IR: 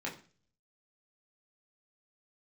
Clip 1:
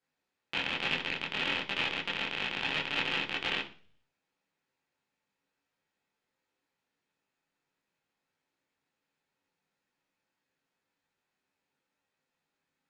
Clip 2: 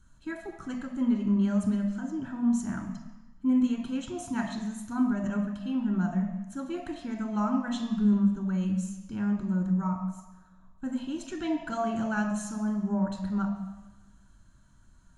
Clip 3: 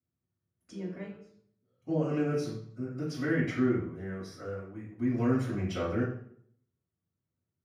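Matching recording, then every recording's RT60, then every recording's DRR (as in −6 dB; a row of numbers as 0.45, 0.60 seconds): 1; 0.40, 1.1, 0.60 seconds; −4.5, 2.0, −10.5 decibels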